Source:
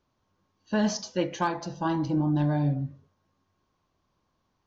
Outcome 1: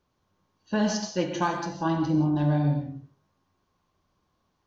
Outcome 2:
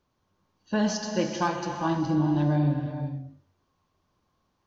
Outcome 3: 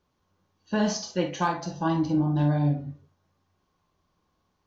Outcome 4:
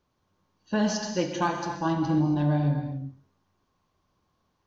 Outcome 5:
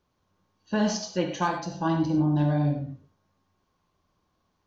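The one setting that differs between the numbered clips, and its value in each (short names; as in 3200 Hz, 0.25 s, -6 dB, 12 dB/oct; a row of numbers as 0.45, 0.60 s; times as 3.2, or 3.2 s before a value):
non-linear reverb, gate: 200, 520, 80, 300, 130 ms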